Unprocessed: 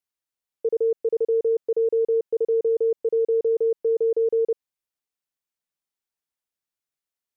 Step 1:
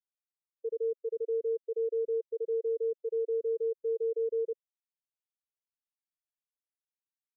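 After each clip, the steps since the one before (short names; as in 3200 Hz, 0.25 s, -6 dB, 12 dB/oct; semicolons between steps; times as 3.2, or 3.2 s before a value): limiter -28.5 dBFS, peak gain reduction 11.5 dB; spectral expander 1.5:1; gain +2.5 dB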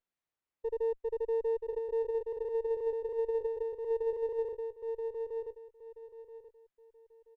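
feedback echo 0.979 s, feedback 25%, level -5 dB; running maximum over 9 samples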